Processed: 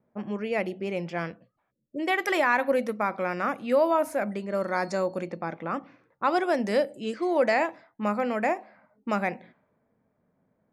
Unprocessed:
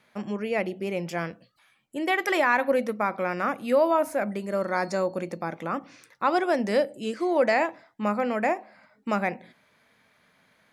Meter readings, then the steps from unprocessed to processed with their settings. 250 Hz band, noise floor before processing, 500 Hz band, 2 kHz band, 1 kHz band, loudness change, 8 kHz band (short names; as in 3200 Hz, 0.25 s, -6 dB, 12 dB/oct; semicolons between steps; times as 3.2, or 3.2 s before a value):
-1.0 dB, -65 dBFS, -1.0 dB, -1.0 dB, -1.0 dB, -1.0 dB, -2.0 dB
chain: low-pass opened by the level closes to 500 Hz, open at -23.5 dBFS; spectral delete 1.71–1.99, 610–5100 Hz; gain -1 dB